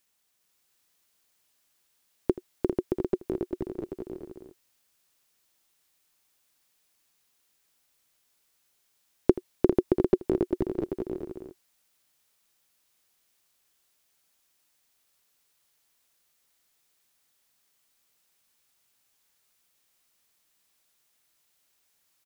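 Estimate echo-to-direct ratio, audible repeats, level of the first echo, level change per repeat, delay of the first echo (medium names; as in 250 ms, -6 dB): 0.0 dB, 4, -17.5 dB, no regular repeats, 81 ms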